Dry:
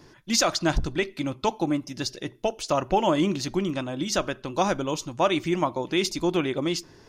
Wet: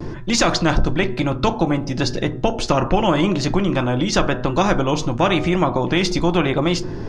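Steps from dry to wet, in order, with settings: LPF 9200 Hz 12 dB/oct; tilt -4 dB/oct; de-hum 121.6 Hz, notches 15; in parallel at +1 dB: compressor, threshold -25 dBFS, peak gain reduction 23 dB; on the sum: vibrato 0.95 Hz 42 cents; on a send at -11 dB: reverb RT60 0.25 s, pre-delay 6 ms; on the sum: spectral compressor 2:1; gain -6 dB

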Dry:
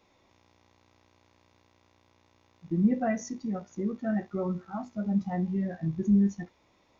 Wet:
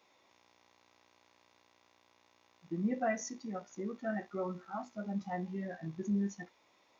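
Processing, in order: HPF 630 Hz 6 dB/oct

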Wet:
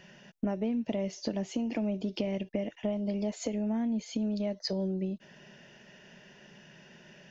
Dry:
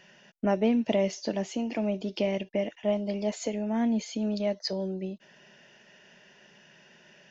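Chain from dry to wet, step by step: low shelf 280 Hz +10 dB; compressor 6:1, threshold -29 dBFS, peak gain reduction 12.5 dB

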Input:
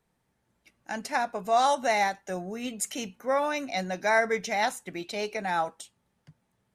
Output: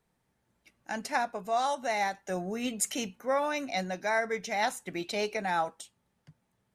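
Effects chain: vocal rider within 4 dB 0.5 s; gain -2.5 dB

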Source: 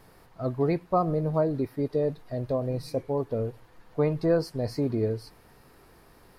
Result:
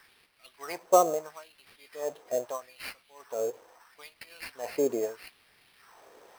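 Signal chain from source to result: LFO high-pass sine 0.77 Hz 450–5000 Hz; sample-rate reducer 7000 Hz, jitter 0%

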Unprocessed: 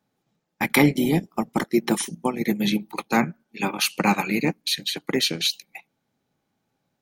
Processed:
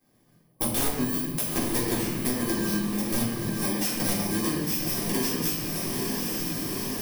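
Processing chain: FFT order left unsorted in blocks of 32 samples; 0.43–0.89 spectral gain 1100–8400 Hz -10 dB; 1.03–1.53 pre-emphasis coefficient 0.8; wrapped overs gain 12 dB; on a send: diffused feedback echo 0.909 s, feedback 52%, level -10 dB; on the sum: shoebox room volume 220 m³, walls mixed, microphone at 3.7 m; compressor 4:1, threshold -27 dBFS, peak gain reduction 20.5 dB

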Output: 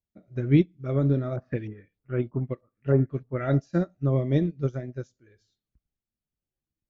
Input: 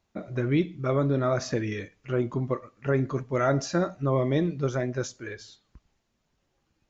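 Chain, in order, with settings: low shelf 340 Hz +10.5 dB; 1.36–3.55 LFO low-pass saw up 3.2 Hz 780–4600 Hz; bell 1000 Hz -7.5 dB 0.53 oct; upward expander 2.5:1, over -30 dBFS

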